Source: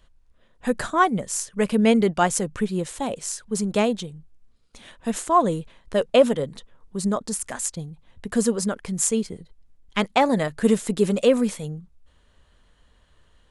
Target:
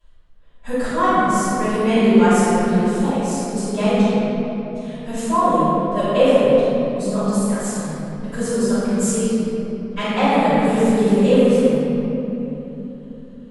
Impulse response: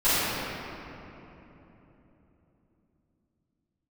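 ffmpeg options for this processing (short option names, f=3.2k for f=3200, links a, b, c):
-filter_complex "[1:a]atrim=start_sample=2205[a];[0:a][a]afir=irnorm=-1:irlink=0,volume=-14dB"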